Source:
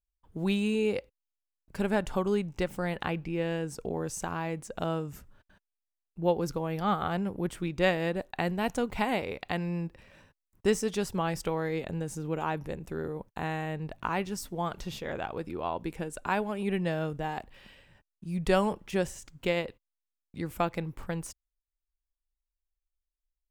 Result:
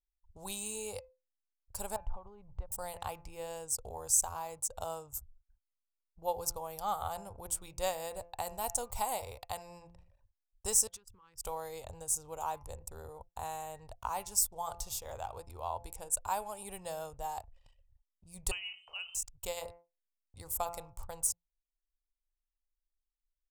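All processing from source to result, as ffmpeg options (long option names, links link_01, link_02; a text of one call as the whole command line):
ffmpeg -i in.wav -filter_complex "[0:a]asettb=1/sr,asplit=3[link_01][link_02][link_03];[link_01]atrim=end=1.964[link_04];[link_02]atrim=start=1.96:end=2.72,asetpts=PTS-STARTPTS,afade=type=in:duration=0.004:curve=qsin,afade=type=out:start_time=0.756:duration=0.004:curve=qsin,lowpass=1700,acompressor=threshold=-38dB:ratio=4:attack=3.2:release=140:knee=1:detection=peak,lowshelf=frequency=140:gain=9.5[link_05];[link_03]atrim=start=2.716[link_06];[link_04][link_05]acrossfade=duration=0.004:curve1=hsin:curve2=qsin[link_07];[link_07][link_06]acrossfade=duration=0.004:curve1=qsin:curve2=hsin,asettb=1/sr,asplit=3[link_08][link_09][link_10];[link_08]atrim=end=10.874[link_11];[link_09]atrim=start=10.87:end=11.44,asetpts=PTS-STARTPTS,afade=type=in:duration=0.004:curve=qsin,afade=type=out:start_time=0.566:duration=0.004:curve=qsin,bass=frequency=250:gain=-8,treble=frequency=4000:gain=-12,acompressor=threshold=-39dB:ratio=16:attack=3.2:release=140:knee=1:detection=peak,asuperstop=centerf=670:order=4:qfactor=0.78[link_12];[link_10]atrim=start=11.436[link_13];[link_11][link_12]acrossfade=duration=0.004:curve1=hsin:curve2=qsin[link_14];[link_14][link_13]acrossfade=duration=0.004:curve1=qsin:curve2=hsin,asettb=1/sr,asplit=3[link_15][link_16][link_17];[link_15]atrim=end=18.514[link_18];[link_16]atrim=start=18.51:end=19.15,asetpts=PTS-STARTPTS,afade=type=in:duration=0.004:curve=qsin,afade=type=out:start_time=0.636:duration=0.004:curve=qsin,bandreject=frequency=193.9:width_type=h:width=4,bandreject=frequency=387.8:width_type=h:width=4,bandreject=frequency=581.7:width_type=h:width=4,bandreject=frequency=775.6:width_type=h:width=4,bandreject=frequency=969.5:width_type=h:width=4,bandreject=frequency=1163.4:width_type=h:width=4,bandreject=frequency=1357.3:width_type=h:width=4,bandreject=frequency=1551.2:width_type=h:width=4,bandreject=frequency=1745.1:width_type=h:width=4,lowpass=frequency=2600:width_type=q:width=0.5098,lowpass=frequency=2600:width_type=q:width=0.6013,lowpass=frequency=2600:width_type=q:width=0.9,lowpass=frequency=2600:width_type=q:width=2.563,afreqshift=-3100,acrossover=split=1000|2100[link_19][link_20][link_21];[link_19]acompressor=threshold=-53dB:ratio=4[link_22];[link_20]acompressor=threshold=-41dB:ratio=4[link_23];[link_21]acompressor=threshold=-27dB:ratio=4[link_24];[link_22][link_23][link_24]amix=inputs=3:normalize=0[link_25];[link_17]atrim=start=19.146[link_26];[link_18][link_25]acrossfade=duration=0.004:curve1=hsin:curve2=qsin[link_27];[link_27][link_26]acrossfade=duration=0.004:curve1=qsin:curve2=hsin,bandreject=frequency=171.4:width_type=h:width=4,bandreject=frequency=342.8:width_type=h:width=4,bandreject=frequency=514.2:width_type=h:width=4,bandreject=frequency=685.6:width_type=h:width=4,bandreject=frequency=857:width_type=h:width=4,bandreject=frequency=1028.4:width_type=h:width=4,bandreject=frequency=1199.8:width_type=h:width=4,bandreject=frequency=1371.2:width_type=h:width=4,bandreject=frequency=1542.6:width_type=h:width=4,bandreject=frequency=1714:width_type=h:width=4,bandreject=frequency=1885.4:width_type=h:width=4,bandreject=frequency=2056.8:width_type=h:width=4,bandreject=frequency=2228.2:width_type=h:width=4,bandreject=frequency=2399.6:width_type=h:width=4,bandreject=frequency=2571:width_type=h:width=4,bandreject=frequency=2742.4:width_type=h:width=4,anlmdn=0.00398,firequalizer=gain_entry='entry(100,0);entry(150,-21);entry(330,-23);entry(500,-9);entry(880,-1);entry(1700,-18);entry(5200,4);entry(7800,14)':delay=0.05:min_phase=1" out.wav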